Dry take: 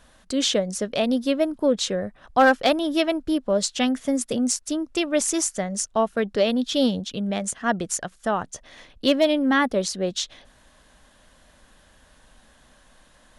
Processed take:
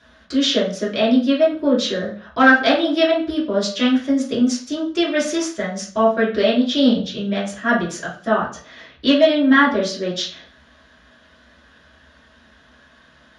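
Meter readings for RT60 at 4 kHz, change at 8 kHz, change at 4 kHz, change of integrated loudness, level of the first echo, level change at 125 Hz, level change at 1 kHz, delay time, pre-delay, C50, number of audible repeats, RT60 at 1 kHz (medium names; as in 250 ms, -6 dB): 0.40 s, -5.5 dB, +4.5 dB, +5.0 dB, no echo, +3.0 dB, +3.5 dB, no echo, 3 ms, 6.0 dB, no echo, 0.45 s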